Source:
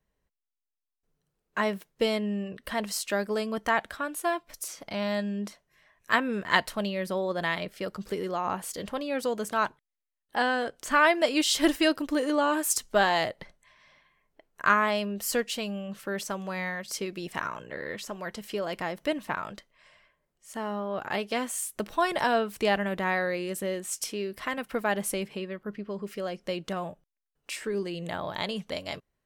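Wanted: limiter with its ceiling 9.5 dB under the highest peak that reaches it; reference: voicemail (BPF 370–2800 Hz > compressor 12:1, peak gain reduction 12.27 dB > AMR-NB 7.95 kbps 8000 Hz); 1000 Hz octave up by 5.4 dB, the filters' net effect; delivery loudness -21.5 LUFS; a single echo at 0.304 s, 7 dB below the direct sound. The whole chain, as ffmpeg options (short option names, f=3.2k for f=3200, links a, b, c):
-af "equalizer=f=1k:t=o:g=7,alimiter=limit=-12dB:level=0:latency=1,highpass=370,lowpass=2.8k,aecho=1:1:304:0.447,acompressor=threshold=-28dB:ratio=12,volume=14dB" -ar 8000 -c:a libopencore_amrnb -b:a 7950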